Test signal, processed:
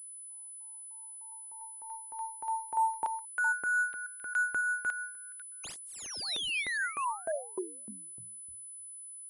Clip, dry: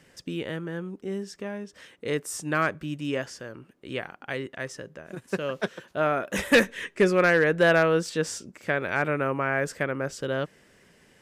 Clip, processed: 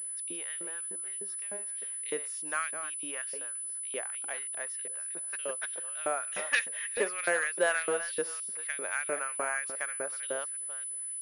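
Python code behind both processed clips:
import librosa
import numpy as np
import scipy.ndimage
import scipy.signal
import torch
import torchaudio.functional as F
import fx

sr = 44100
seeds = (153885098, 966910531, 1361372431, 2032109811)

y = fx.reverse_delay(x, sr, ms=271, wet_db=-11.0)
y = fx.filter_lfo_highpass(y, sr, shape='saw_up', hz=3.3, low_hz=360.0, high_hz=3900.0, q=1.3)
y = fx.pwm(y, sr, carrier_hz=10000.0)
y = F.gain(torch.from_numpy(y), -7.5).numpy()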